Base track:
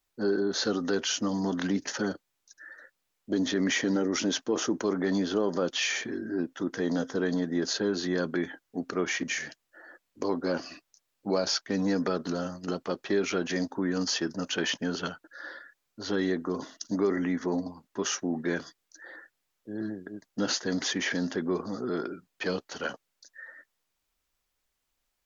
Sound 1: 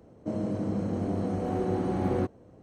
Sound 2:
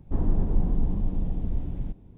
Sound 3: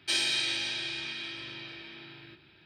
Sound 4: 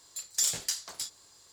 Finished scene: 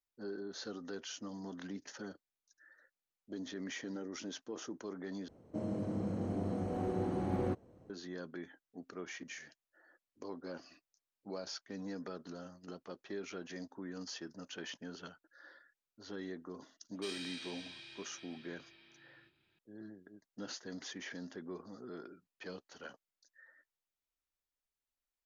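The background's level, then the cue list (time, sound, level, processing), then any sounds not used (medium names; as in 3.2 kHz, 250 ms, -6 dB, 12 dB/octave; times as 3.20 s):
base track -16 dB
5.28 s: replace with 1 -7 dB
16.94 s: add 3 -17 dB
not used: 2, 4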